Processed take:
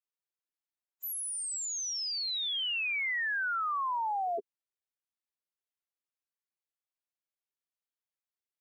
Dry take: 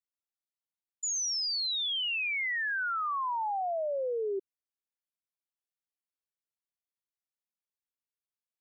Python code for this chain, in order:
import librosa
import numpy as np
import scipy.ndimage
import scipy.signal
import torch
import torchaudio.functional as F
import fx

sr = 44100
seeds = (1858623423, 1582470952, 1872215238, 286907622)

y = fx.pitch_keep_formants(x, sr, semitones=9.5)
y = fx.bass_treble(y, sr, bass_db=-10, treble_db=-4)